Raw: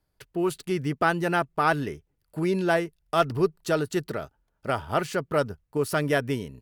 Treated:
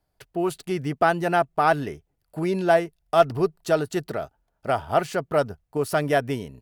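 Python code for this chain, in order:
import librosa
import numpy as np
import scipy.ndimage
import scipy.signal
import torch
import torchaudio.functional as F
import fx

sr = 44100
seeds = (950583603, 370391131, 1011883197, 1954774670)

y = fx.peak_eq(x, sr, hz=710.0, db=8.5, octaves=0.44)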